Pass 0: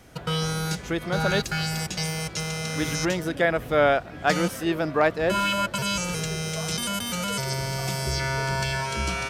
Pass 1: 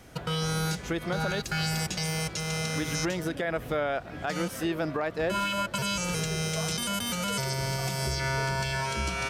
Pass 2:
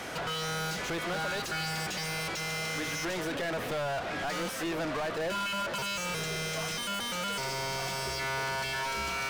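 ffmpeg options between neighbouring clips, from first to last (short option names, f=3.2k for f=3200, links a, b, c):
-af "alimiter=limit=-20dB:level=0:latency=1:release=185"
-filter_complex "[0:a]asplit=2[a][b];[b]highpass=f=720:p=1,volume=34dB,asoftclip=type=tanh:threshold=-19.5dB[c];[a][c]amix=inputs=2:normalize=0,lowpass=f=3.9k:p=1,volume=-6dB,volume=-7.5dB"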